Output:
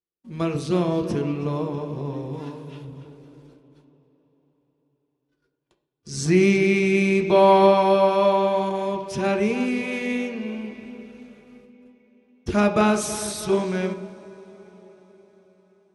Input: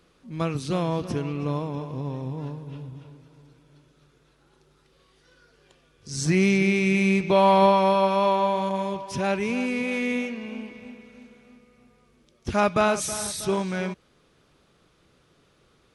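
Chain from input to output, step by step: 2.33–2.85 tilt shelf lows -6 dB, about 740 Hz; gate -54 dBFS, range -40 dB; on a send: bell 340 Hz +13 dB 1.5 oct + reverb, pre-delay 3 ms, DRR 4 dB

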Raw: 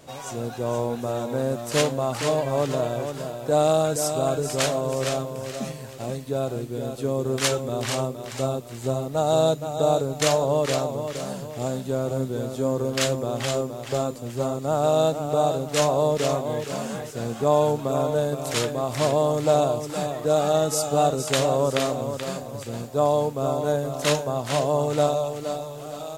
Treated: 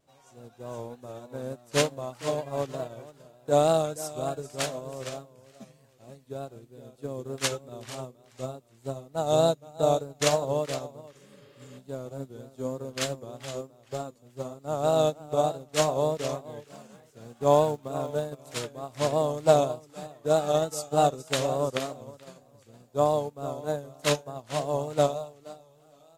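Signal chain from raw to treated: vibrato 3.3 Hz 63 cents; 11.17–11.76 spectral repair 270–5300 Hz before; 16.65–18.41 crackle 140/s -32 dBFS; upward expander 2.5:1, over -32 dBFS; gain +2 dB

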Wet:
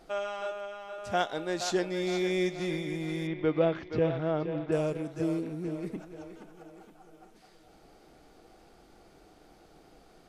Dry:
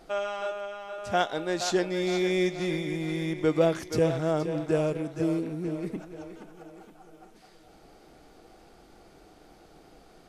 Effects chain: 3.27–4.72 LPF 3600 Hz 24 dB/oct; gain -3 dB

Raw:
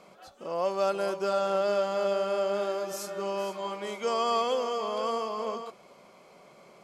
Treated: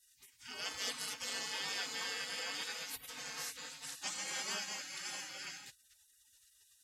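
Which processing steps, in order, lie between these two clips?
spectral gate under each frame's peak -30 dB weak; notch comb 340 Hz; gain +9.5 dB

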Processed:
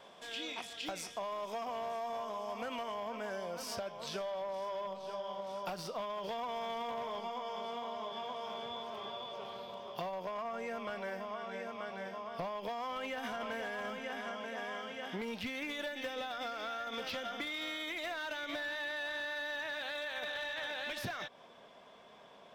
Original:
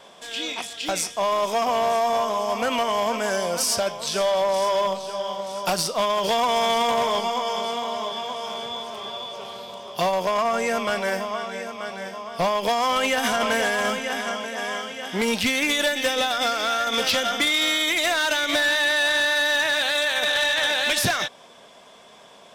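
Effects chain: bell 8700 Hz -7.5 dB 1.6 oct, from 2.94 s -14.5 dB; compressor 6:1, threshold -30 dBFS, peak gain reduction 10 dB; gain -7.5 dB

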